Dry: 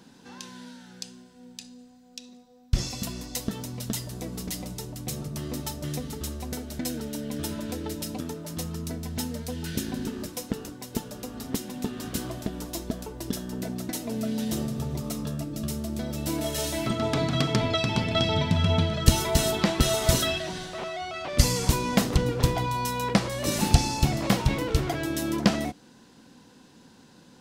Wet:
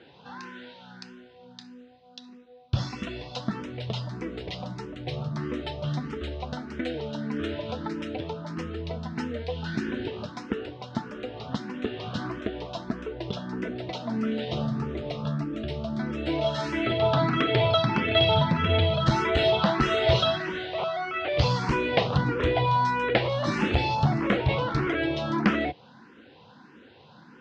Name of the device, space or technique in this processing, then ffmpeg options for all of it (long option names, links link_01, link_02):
barber-pole phaser into a guitar amplifier: -filter_complex "[0:a]asettb=1/sr,asplit=3[link_01][link_02][link_03];[link_01]atrim=end=23.954[link_04];[link_02]atrim=start=23.95:end=24.49,asetpts=PTS-STARTPTS,afade=type=in:duration=0.004:curve=qsin,afade=type=out:start_time=0.536:duration=0.004:curve=qsin,equalizer=frequency=3700:width=0.62:gain=-5[link_05];[link_03]atrim=start=24.486[link_06];[link_04][link_05]acrossfade=duration=0.004:curve1=hsin:curve2=qsin[link_07];[link_07][link_06]acrossfade=duration=0.004:curve1=qsin:curve2=hsin,asplit=2[link_08][link_09];[link_09]afreqshift=1.6[link_10];[link_08][link_10]amix=inputs=2:normalize=1,asoftclip=type=tanh:threshold=-16.5dB,highpass=100,equalizer=frequency=180:width_type=q:width=4:gain=-6,equalizer=frequency=260:width_type=q:width=4:gain=-6,equalizer=frequency=1400:width_type=q:width=4:gain=3,lowpass=frequency=3600:width=0.5412,lowpass=frequency=3600:width=1.3066,volume=7.5dB"